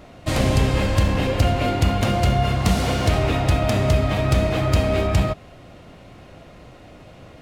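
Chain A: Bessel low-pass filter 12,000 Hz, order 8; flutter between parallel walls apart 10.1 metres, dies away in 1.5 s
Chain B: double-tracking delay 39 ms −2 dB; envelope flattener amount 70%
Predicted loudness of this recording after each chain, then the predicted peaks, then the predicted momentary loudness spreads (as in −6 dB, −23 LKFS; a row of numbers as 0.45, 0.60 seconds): −16.5, −16.0 LKFS; −2.0, −2.5 dBFS; 6, 7 LU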